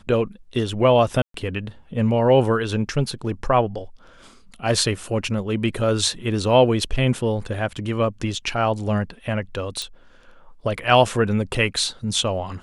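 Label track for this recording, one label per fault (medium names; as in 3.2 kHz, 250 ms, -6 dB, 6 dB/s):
1.220000	1.340000	dropout 123 ms
9.820000	9.820000	pop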